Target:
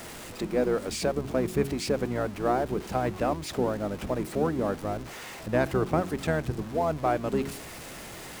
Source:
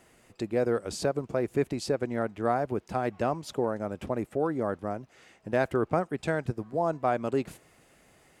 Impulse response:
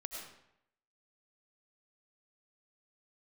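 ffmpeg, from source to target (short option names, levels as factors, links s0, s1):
-filter_complex "[0:a]aeval=exprs='val(0)+0.5*0.0133*sgn(val(0))':c=same,asplit=2[s0][s1];[s1]asetrate=22050,aresample=44100,atempo=2,volume=0.501[s2];[s0][s2]amix=inputs=2:normalize=0,bandreject=f=45.95:t=h:w=4,bandreject=f=91.9:t=h:w=4,bandreject=f=137.85:t=h:w=4,bandreject=f=183.8:t=h:w=4,bandreject=f=229.75:t=h:w=4,bandreject=f=275.7:t=h:w=4,bandreject=f=321.65:t=h:w=4,bandreject=f=367.6:t=h:w=4,bandreject=f=413.55:t=h:w=4"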